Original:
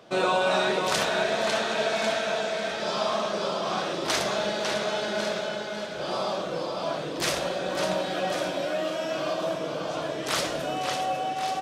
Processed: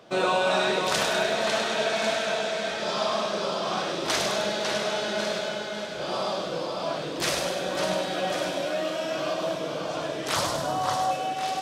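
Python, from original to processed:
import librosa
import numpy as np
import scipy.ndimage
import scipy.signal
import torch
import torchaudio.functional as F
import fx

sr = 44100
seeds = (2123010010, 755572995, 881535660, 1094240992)

y = fx.graphic_eq_15(x, sr, hz=(100, 400, 1000, 2500), db=(12, -4, 10, -10), at=(10.36, 11.11))
y = fx.echo_wet_highpass(y, sr, ms=100, feedback_pct=54, hz=2300.0, wet_db=-4.5)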